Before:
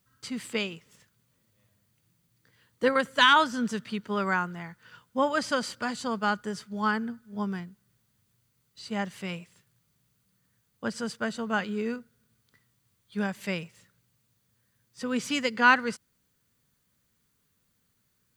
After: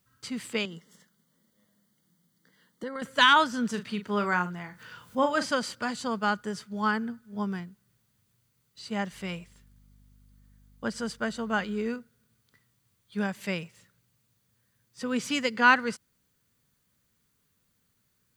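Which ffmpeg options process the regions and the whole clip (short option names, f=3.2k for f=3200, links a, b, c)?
-filter_complex "[0:a]asettb=1/sr,asplit=3[a][b][c];[a]atrim=end=0.654[d];[b]atrim=start=0.65:end=3.02,asetpts=PTS-STARTPTS,afade=t=in:d=0.004:c=qsin,afade=t=out:st=2.366:d=0.004:c=qsin,lowshelf=f=140:t=q:w=3:g=-9,acompressor=threshold=-37dB:ratio=3:attack=3.2:release=140:knee=1:detection=peak,asuperstop=centerf=2500:order=8:qfactor=3.9[e];[c]atrim=start=3.016[f];[d][e]acrossfade=d=0.004:c1=hsin:c2=qsin[g];[g][f]acrossfade=d=0.004:c1=qsin:c2=hsin,asettb=1/sr,asplit=3[h][i][j];[h]atrim=end=3.704[k];[i]atrim=start=3.7:end=5.51,asetpts=PTS-STARTPTS,afade=t=in:d=0.004:c=qsin,afade=t=out:st=1.806:d=0.004:c=qsin,acompressor=mode=upward:threshold=-38dB:ratio=2.5:attack=3.2:release=140:knee=2.83:detection=peak,asplit=2[l][m];[m]adelay=39,volume=-10dB[n];[l][n]amix=inputs=2:normalize=0,atrim=end_sample=79821[o];[j]atrim=start=5.506[p];[k][o]acrossfade=d=0.004:c1=hsin:c2=qsin[q];[q][p]acrossfade=d=0.004:c1=qsin:c2=hsin,asettb=1/sr,asplit=3[r][s][t];[r]atrim=end=9.124[u];[s]atrim=start=9.12:end=11.88,asetpts=PTS-STARTPTS,afade=t=in:d=0.004:c=qsin,afade=t=out:st=2.756:d=0.004:c=qsin,bandreject=f=2.6k:w=24,aeval=exprs='val(0)+0.00141*(sin(2*PI*50*n/s)+sin(2*PI*2*50*n/s)/2+sin(2*PI*3*50*n/s)/3+sin(2*PI*4*50*n/s)/4+sin(2*PI*5*50*n/s)/5)':c=same[v];[t]atrim=start=11.876[w];[u][v]acrossfade=d=0.004:c1=hsin:c2=qsin[x];[x][w]acrossfade=d=0.004:c1=qsin:c2=hsin"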